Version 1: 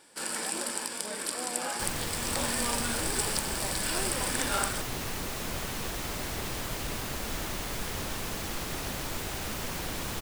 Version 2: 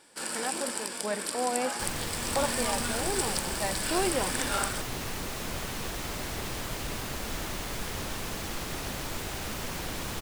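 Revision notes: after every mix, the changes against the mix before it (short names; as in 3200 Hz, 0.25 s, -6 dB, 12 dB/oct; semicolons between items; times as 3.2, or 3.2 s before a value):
speech +10.5 dB; master: add high shelf 12000 Hz -3.5 dB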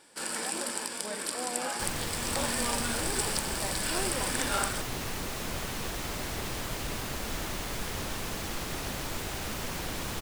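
speech -8.0 dB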